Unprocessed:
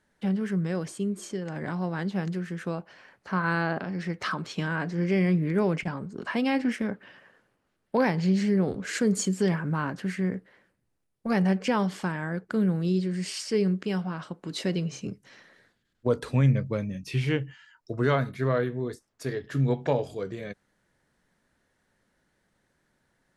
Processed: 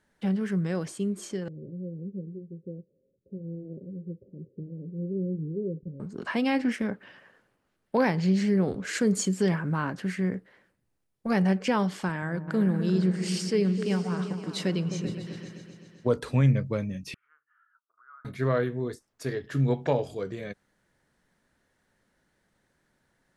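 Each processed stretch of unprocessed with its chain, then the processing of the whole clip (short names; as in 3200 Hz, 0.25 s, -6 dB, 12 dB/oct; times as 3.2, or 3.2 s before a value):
1.48–6 flange 1 Hz, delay 2.4 ms, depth 1.9 ms, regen -78% + rippled Chebyshev low-pass 550 Hz, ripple 6 dB
12.09–16.17 HPF 47 Hz + repeats that get brighter 0.129 s, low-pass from 200 Hz, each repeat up 2 oct, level -6 dB
17.14–18.25 compressor 4:1, threshold -38 dBFS + Butterworth band-pass 1300 Hz, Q 4.8
whole clip: dry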